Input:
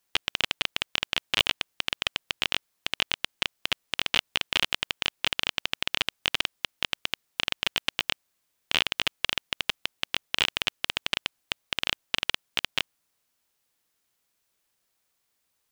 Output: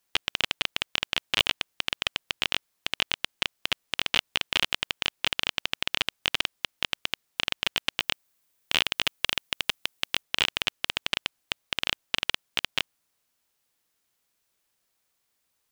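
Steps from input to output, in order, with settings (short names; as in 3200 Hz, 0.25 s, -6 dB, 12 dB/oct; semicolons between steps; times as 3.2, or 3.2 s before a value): 8.01–10.21 high shelf 11000 Hz -> 6000 Hz +6.5 dB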